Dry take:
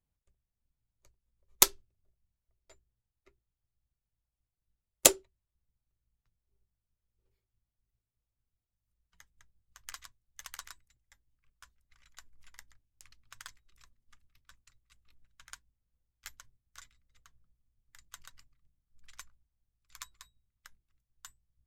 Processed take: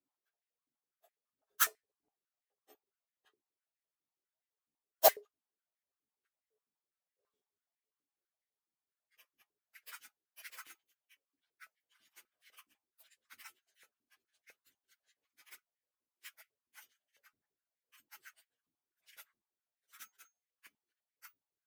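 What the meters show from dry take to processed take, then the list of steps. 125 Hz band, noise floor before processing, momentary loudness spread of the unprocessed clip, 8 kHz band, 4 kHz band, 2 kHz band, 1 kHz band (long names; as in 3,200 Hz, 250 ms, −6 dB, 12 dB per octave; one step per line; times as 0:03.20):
below −15 dB, below −85 dBFS, 5 LU, −12.0 dB, −9.0 dB, −2.0 dB, +3.5 dB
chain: partials spread apart or drawn together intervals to 119%
high-pass on a step sequencer 12 Hz 290–1,900 Hz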